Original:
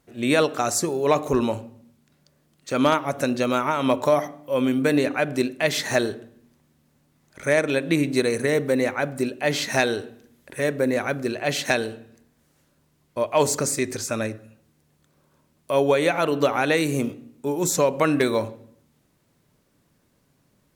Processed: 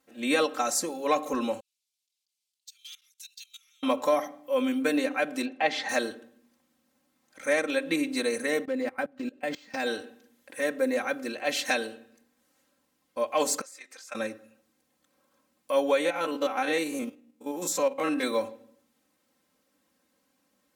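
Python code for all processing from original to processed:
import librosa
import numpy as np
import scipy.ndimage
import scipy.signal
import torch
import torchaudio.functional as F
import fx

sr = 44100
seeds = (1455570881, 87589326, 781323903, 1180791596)

y = fx.chain(x, sr, fx.cheby2_bandstop(low_hz=110.0, high_hz=730.0, order=4, stop_db=80),
    fx.level_steps(step_db=20),
    fx.resample_linear(factor=2), at=(1.6, 3.83))
y = fx.chain(y, sr, fx.lowpass(hz=3700.0, slope=12),
    fx.peak_eq(hz=780.0, db=12.5, octaves=0.29), at=(5.45, 5.89))
y = fx.chain(y, sr, fx.low_shelf(hz=300.0, db=8.5),
    fx.level_steps(step_db=24),
    fx.resample_linear(factor=4), at=(8.65, 9.86))
y = fx.chain(y, sr, fx.highpass(hz=850.0, slope=12),
    fx.high_shelf(hz=5900.0, db=-9.0),
    fx.level_steps(step_db=15), at=(13.61, 14.15))
y = fx.chain(y, sr, fx.spec_steps(hold_ms=50),
    fx.transient(attack_db=-1, sustain_db=-7), at=(16.0, 18.23))
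y = fx.highpass(y, sr, hz=410.0, slope=6)
y = y + 0.97 * np.pad(y, (int(3.8 * sr / 1000.0), 0))[:len(y)]
y = F.gain(torch.from_numpy(y), -6.0).numpy()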